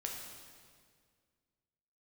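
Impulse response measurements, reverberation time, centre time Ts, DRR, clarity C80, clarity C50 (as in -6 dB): 1.9 s, 70 ms, -0.5 dB, 4.0 dB, 2.5 dB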